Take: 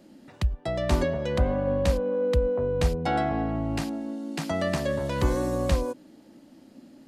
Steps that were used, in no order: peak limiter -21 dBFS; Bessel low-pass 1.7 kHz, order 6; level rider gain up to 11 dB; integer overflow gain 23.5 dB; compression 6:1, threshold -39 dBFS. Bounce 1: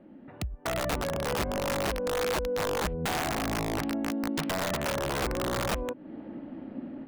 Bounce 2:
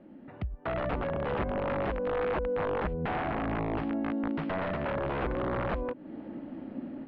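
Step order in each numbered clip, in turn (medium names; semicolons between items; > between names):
Bessel low-pass > compression > peak limiter > level rider > integer overflow; compression > peak limiter > level rider > integer overflow > Bessel low-pass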